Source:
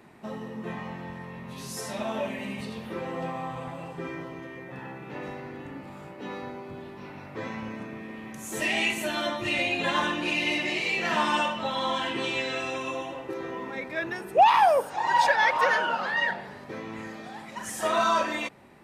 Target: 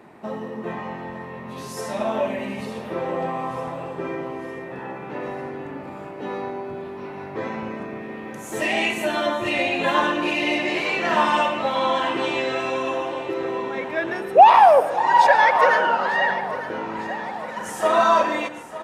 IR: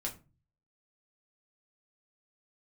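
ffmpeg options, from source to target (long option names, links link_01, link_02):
-filter_complex "[0:a]equalizer=frequency=610:width=0.35:gain=9,aecho=1:1:902|1804|2706|3608|4510|5412:0.188|0.105|0.0591|0.0331|0.0185|0.0104,asplit=2[link_01][link_02];[1:a]atrim=start_sample=2205,asetrate=22932,aresample=44100,adelay=112[link_03];[link_02][link_03]afir=irnorm=-1:irlink=0,volume=-18dB[link_04];[link_01][link_04]amix=inputs=2:normalize=0,volume=-1dB"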